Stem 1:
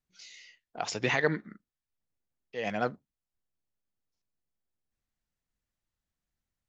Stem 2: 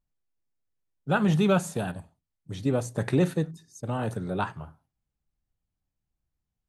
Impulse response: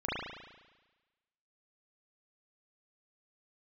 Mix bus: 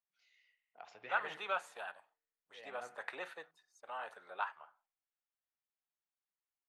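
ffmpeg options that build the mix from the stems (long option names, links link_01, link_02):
-filter_complex "[0:a]volume=-18dB,asplit=2[link_01][link_02];[link_02]volume=-16.5dB[link_03];[1:a]highpass=860,volume=-4.5dB[link_04];[2:a]atrim=start_sample=2205[link_05];[link_03][link_05]afir=irnorm=-1:irlink=0[link_06];[link_01][link_04][link_06]amix=inputs=3:normalize=0,acrossover=split=510 3200:gain=0.158 1 0.126[link_07][link_08][link_09];[link_07][link_08][link_09]amix=inputs=3:normalize=0"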